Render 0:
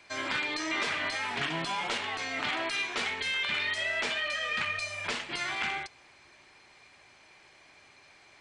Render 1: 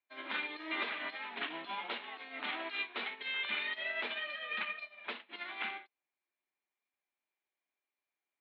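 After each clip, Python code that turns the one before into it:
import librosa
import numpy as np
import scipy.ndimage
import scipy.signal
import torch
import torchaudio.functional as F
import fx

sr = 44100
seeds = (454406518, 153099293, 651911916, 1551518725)

y = scipy.signal.sosfilt(scipy.signal.cheby1(5, 1.0, [200.0, 3900.0], 'bandpass', fs=sr, output='sos'), x)
y = fx.upward_expand(y, sr, threshold_db=-52.0, expansion=2.5)
y = y * librosa.db_to_amplitude(-3.0)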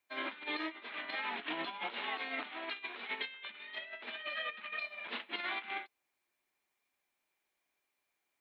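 y = fx.over_compress(x, sr, threshold_db=-44.0, ratio=-0.5)
y = y * librosa.db_to_amplitude(3.5)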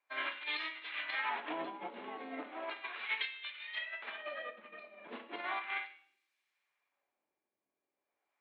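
y = fx.comb_fb(x, sr, f0_hz=560.0, decay_s=0.58, harmonics='all', damping=0.0, mix_pct=70)
y = fx.room_shoebox(y, sr, seeds[0], volume_m3=200.0, walls='mixed', distance_m=0.35)
y = fx.filter_lfo_bandpass(y, sr, shape='sine', hz=0.36, low_hz=260.0, high_hz=3300.0, q=0.84)
y = y * librosa.db_to_amplitude(13.5)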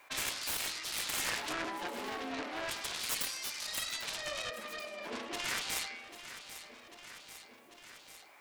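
y = fx.self_delay(x, sr, depth_ms=0.9)
y = fx.echo_feedback(y, sr, ms=794, feedback_pct=50, wet_db=-23.5)
y = fx.env_flatten(y, sr, amount_pct=50)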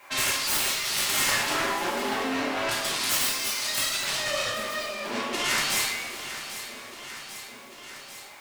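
y = fx.rev_double_slope(x, sr, seeds[1], early_s=0.54, late_s=4.5, knee_db=-17, drr_db=-5.0)
y = y * librosa.db_to_amplitude(5.0)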